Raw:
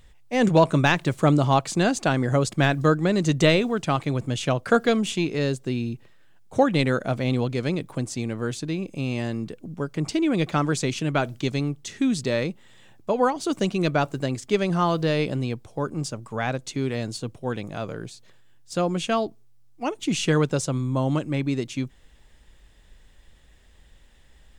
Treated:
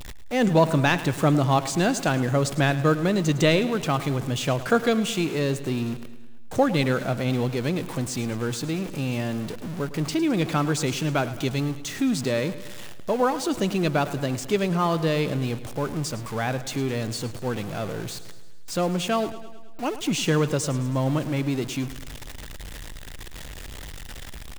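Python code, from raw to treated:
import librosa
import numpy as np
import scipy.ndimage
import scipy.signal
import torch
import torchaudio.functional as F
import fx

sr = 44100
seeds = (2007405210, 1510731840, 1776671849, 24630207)

p1 = x + 0.5 * 10.0 ** (-30.0 / 20.0) * np.sign(x)
p2 = p1 + fx.echo_feedback(p1, sr, ms=107, feedback_pct=58, wet_db=-15, dry=0)
y = p2 * librosa.db_to_amplitude(-2.0)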